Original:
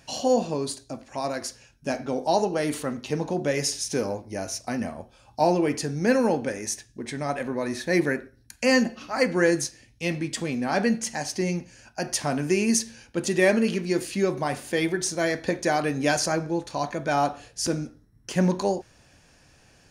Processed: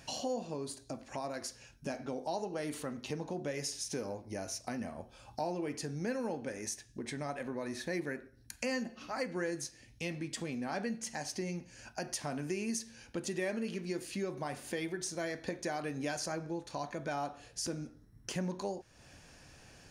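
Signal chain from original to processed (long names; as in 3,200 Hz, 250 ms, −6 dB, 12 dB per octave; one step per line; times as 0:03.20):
0:00.54–0:01.34: dynamic equaliser 4,500 Hz, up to −4 dB, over −44 dBFS, Q 0.74
downward compressor 2.5 to 1, threshold −41 dBFS, peak gain reduction 17 dB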